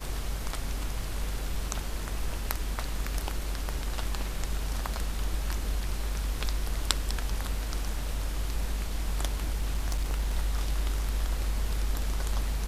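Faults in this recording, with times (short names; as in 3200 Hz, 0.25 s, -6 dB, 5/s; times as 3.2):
9.54–10.33 clipped -23.5 dBFS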